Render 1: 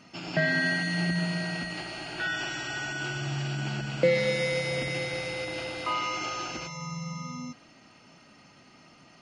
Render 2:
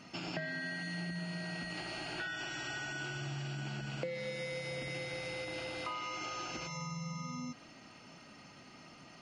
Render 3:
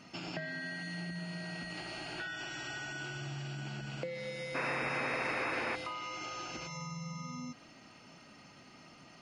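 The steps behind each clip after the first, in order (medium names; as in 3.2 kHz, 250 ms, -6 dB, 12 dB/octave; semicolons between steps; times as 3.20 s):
compression 6:1, threshold -38 dBFS, peak gain reduction 18.5 dB
painted sound noise, 4.54–5.76 s, 220–2700 Hz -35 dBFS; trim -1 dB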